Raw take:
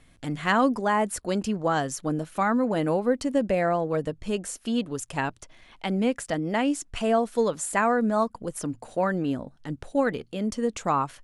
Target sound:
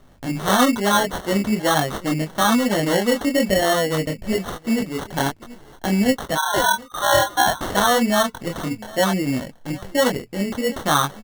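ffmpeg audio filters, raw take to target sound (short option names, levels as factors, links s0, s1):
-filter_complex "[0:a]asettb=1/sr,asplit=3[s0][s1][s2];[s0]atrim=end=6.354[s3];[s1]atrim=start=6.35:end=7.61,asetpts=PTS-STARTPTS,afade=t=in:d=0.004:c=qsin,afade=t=out:st=1.256:d=0.004:c=qsin,lowpass=f=3100:t=q:w=0.5098,lowpass=f=3100:t=q:w=0.6013,lowpass=f=3100:t=q:w=0.9,lowpass=f=3100:t=q:w=2.563,afreqshift=-3700[s4];[s2]atrim=start=7.606[s5];[s3][s4]acrossfade=d=0.004:c1=hsin:c2=qsin[s6];[s6][s5]acrossfade=d=0.004:c1=qsin:c2=hsin,asplit=2[s7][s8];[s8]asoftclip=type=tanh:threshold=0.106,volume=0.398[s9];[s7][s9]amix=inputs=2:normalize=0,bandreject=f=450:w=12,aecho=1:1:731:0.075,flanger=delay=20:depth=5.6:speed=1.1,acrusher=samples=18:mix=1:aa=0.000001,volume=2.11"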